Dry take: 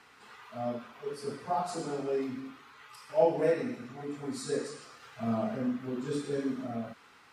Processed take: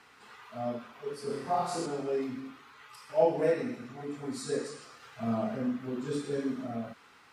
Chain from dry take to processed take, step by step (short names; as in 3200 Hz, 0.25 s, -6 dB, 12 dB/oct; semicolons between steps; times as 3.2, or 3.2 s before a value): 1.27–1.86 flutter echo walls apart 5.1 m, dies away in 0.61 s